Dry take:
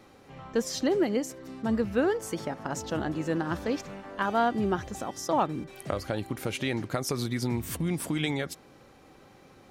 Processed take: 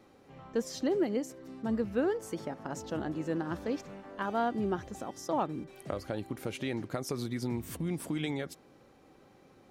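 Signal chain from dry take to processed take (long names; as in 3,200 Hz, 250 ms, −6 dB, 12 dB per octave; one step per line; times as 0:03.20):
parametric band 330 Hz +4.5 dB 2.6 octaves
level −8 dB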